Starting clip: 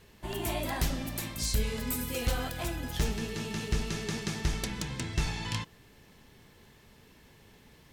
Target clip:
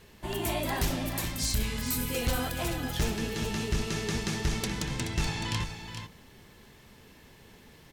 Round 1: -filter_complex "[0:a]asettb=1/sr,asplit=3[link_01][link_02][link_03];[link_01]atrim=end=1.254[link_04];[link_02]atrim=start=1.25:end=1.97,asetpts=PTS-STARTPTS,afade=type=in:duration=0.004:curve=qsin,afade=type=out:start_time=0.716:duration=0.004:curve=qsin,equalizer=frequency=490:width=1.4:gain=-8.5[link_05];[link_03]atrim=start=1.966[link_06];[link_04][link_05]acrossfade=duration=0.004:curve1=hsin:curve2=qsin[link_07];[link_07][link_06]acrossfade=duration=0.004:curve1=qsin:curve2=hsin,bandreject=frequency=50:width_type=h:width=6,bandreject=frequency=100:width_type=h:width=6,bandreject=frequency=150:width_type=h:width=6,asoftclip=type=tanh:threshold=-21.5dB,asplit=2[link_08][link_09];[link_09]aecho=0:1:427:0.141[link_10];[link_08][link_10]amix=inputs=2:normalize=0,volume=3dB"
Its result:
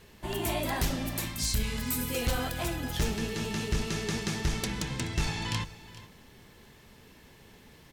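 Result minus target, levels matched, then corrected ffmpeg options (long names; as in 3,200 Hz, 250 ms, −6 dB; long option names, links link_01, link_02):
echo-to-direct −8.5 dB
-filter_complex "[0:a]asettb=1/sr,asplit=3[link_01][link_02][link_03];[link_01]atrim=end=1.254[link_04];[link_02]atrim=start=1.25:end=1.97,asetpts=PTS-STARTPTS,afade=type=in:duration=0.004:curve=qsin,afade=type=out:start_time=0.716:duration=0.004:curve=qsin,equalizer=frequency=490:width=1.4:gain=-8.5[link_05];[link_03]atrim=start=1.966[link_06];[link_04][link_05]acrossfade=duration=0.004:curve1=hsin:curve2=qsin[link_07];[link_07][link_06]acrossfade=duration=0.004:curve1=qsin:curve2=hsin,bandreject=frequency=50:width_type=h:width=6,bandreject=frequency=100:width_type=h:width=6,bandreject=frequency=150:width_type=h:width=6,asoftclip=type=tanh:threshold=-21.5dB,asplit=2[link_08][link_09];[link_09]aecho=0:1:427:0.376[link_10];[link_08][link_10]amix=inputs=2:normalize=0,volume=3dB"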